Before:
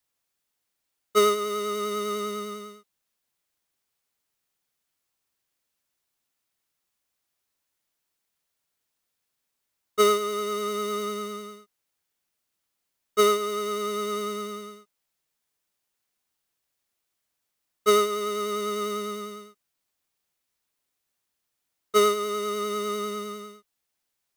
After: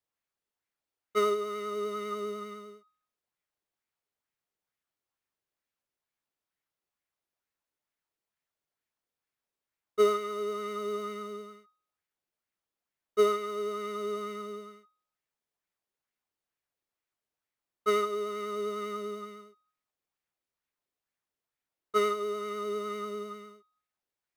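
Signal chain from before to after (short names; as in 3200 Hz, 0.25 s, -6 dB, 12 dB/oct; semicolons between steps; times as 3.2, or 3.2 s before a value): high shelf 3600 Hz -9 dB; de-hum 251.2 Hz, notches 29; LFO bell 2.2 Hz 380–2200 Hz +6 dB; gain -7 dB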